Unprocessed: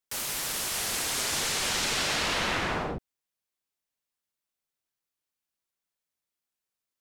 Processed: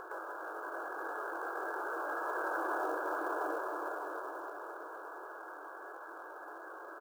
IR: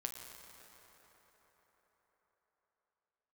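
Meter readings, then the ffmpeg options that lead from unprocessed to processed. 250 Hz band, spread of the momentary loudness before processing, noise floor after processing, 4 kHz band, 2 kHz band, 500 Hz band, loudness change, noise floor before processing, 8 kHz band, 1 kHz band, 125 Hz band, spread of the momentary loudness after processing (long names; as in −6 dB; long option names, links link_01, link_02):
−5.5 dB, 5 LU, −48 dBFS, below −30 dB, −6.5 dB, 0.0 dB, −12.0 dB, below −85 dBFS, −31.0 dB, −0.5 dB, below −35 dB, 12 LU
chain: -filter_complex "[0:a]aeval=exprs='val(0)+0.5*0.0075*sgn(val(0))':channel_layout=same,asplit=2[link_01][link_02];[1:a]atrim=start_sample=2205,adelay=21[link_03];[link_02][link_03]afir=irnorm=-1:irlink=0,volume=0dB[link_04];[link_01][link_04]amix=inputs=2:normalize=0,acompressor=threshold=-36dB:ratio=6,aecho=1:1:611:0.668,afftfilt=real='re*between(b*sr/4096,300,1700)':imag='im*between(b*sr/4096,300,1700)':win_size=4096:overlap=0.75,acompressor=mode=upward:threshold=-45dB:ratio=2.5,acrusher=bits=6:mode=log:mix=0:aa=0.000001,volume=5dB"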